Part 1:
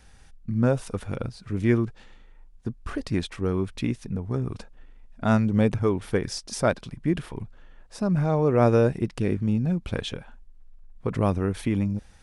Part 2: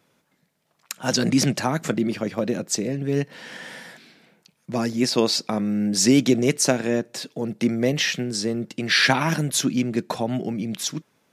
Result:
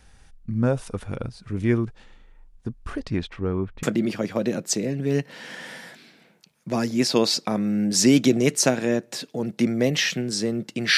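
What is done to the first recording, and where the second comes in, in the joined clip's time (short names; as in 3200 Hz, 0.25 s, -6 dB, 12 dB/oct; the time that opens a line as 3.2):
part 1
2.99–3.83 LPF 7100 Hz -> 1500 Hz
3.83 switch to part 2 from 1.85 s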